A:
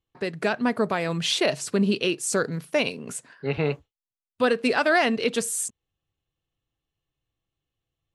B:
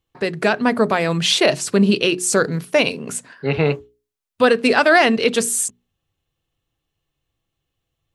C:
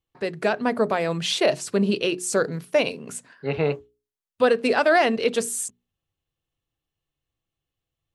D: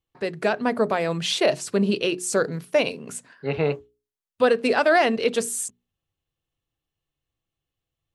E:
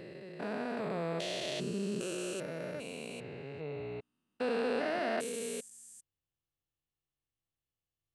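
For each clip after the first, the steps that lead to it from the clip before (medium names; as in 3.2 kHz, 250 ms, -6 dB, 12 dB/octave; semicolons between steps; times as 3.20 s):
hum notches 60/120/180/240/300/360/420 Hz; trim +7.5 dB
dynamic bell 570 Hz, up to +5 dB, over -25 dBFS, Q 1; trim -8 dB
no audible change
spectrogram pixelated in time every 400 ms; trim -8.5 dB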